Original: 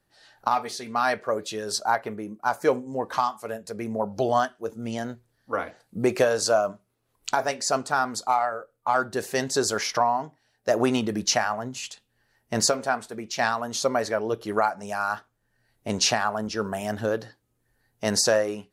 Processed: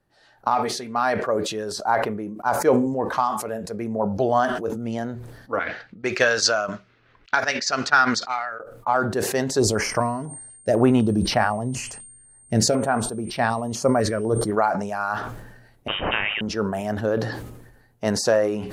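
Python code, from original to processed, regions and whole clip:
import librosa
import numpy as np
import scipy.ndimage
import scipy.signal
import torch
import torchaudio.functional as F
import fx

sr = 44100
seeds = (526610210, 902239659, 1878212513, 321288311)

y = fx.chain(x, sr, fx.env_lowpass(base_hz=2200.0, full_db=-19.0),
    fx.band_shelf(hz=3000.0, db=15.5, octaves=2.6),
    fx.upward_expand(threshold_db=-30.0, expansion=2.5), at=(5.59, 8.6))
y = fx.low_shelf(y, sr, hz=160.0, db=11.5, at=(9.58, 14.5), fade=0.02)
y = fx.dmg_tone(y, sr, hz=8700.0, level_db=-43.0, at=(9.58, 14.5), fade=0.02)
y = fx.filter_held_notch(y, sr, hz=4.0, low_hz=820.0, high_hz=6700.0, at=(9.58, 14.5), fade=0.02)
y = fx.chain(y, sr, fx.highpass_res(hz=410.0, q=2.4),
    fx.freq_invert(carrier_hz=3400),
    fx.spectral_comp(ratio=2.0), at=(15.88, 16.41))
y = fx.high_shelf(y, sr, hz=2100.0, db=-9.5)
y = fx.sustainer(y, sr, db_per_s=51.0)
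y = y * librosa.db_to_amplitude(3.0)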